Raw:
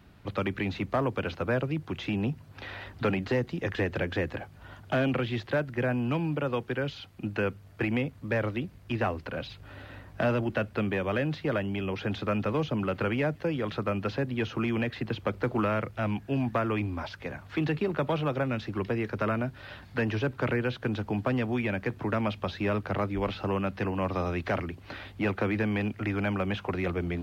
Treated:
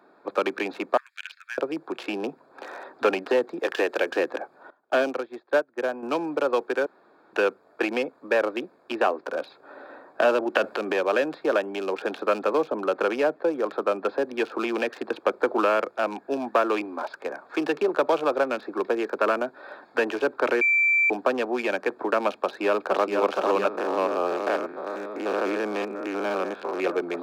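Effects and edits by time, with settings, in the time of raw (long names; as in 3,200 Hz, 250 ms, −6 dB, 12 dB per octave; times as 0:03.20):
0:00.97–0:01.58: Butterworth high-pass 1,700 Hz 48 dB per octave
0:03.60–0:04.10: bass and treble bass −7 dB, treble +8 dB
0:04.70–0:06.03: expander for the loud parts 2.5 to 1, over −37 dBFS
0:06.86–0:07.33: fill with room tone
0:08.93–0:09.44: high-frequency loss of the air 66 metres
0:10.55–0:10.99: transient designer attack −6 dB, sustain +9 dB
0:12.67–0:14.24: high-shelf EQ 3,300 Hz −7.5 dB
0:20.61–0:21.10: beep over 2,340 Hz −24 dBFS
0:22.33–0:23.17: delay throw 470 ms, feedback 85%, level −3.5 dB
0:23.68–0:26.80: spectrum averaged block by block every 100 ms
whole clip: adaptive Wiener filter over 15 samples; high-pass filter 350 Hz 24 dB per octave; notch filter 2,000 Hz, Q 5.4; level +8.5 dB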